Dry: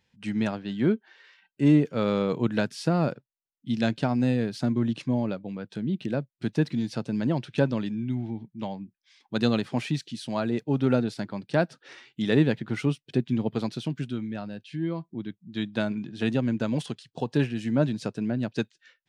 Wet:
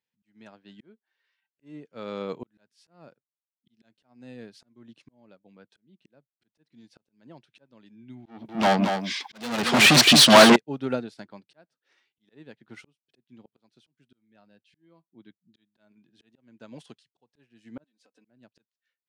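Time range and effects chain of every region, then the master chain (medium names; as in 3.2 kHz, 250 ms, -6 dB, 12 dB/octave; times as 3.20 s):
8.26–10.56 s: bass shelf 320 Hz +8.5 dB + overdrive pedal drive 38 dB, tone 7.5 kHz, clips at -6 dBFS + delay 227 ms -8 dB
17.84–18.25 s: high-pass 350 Hz + comb 3.9 ms, depth 96% + compression 12:1, threshold -37 dBFS
whole clip: high-pass 340 Hz 6 dB/octave; slow attack 690 ms; upward expansion 1.5:1, over -57 dBFS; trim +4 dB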